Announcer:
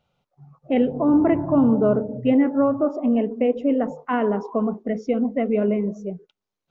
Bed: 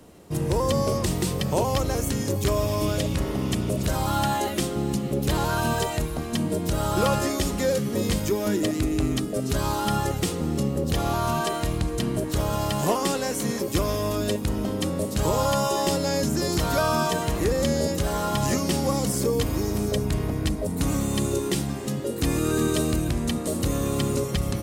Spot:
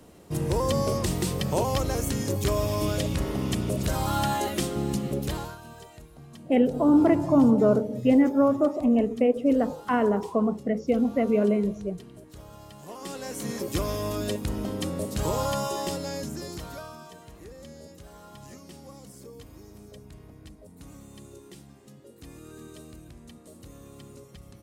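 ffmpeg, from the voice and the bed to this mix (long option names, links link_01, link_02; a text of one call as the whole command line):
ffmpeg -i stem1.wav -i stem2.wav -filter_complex "[0:a]adelay=5800,volume=-1.5dB[link_01];[1:a]volume=15dB,afade=type=out:start_time=5.07:duration=0.51:silence=0.112202,afade=type=in:start_time=12.87:duration=0.79:silence=0.141254,afade=type=out:start_time=15.34:duration=1.63:silence=0.125893[link_02];[link_01][link_02]amix=inputs=2:normalize=0" out.wav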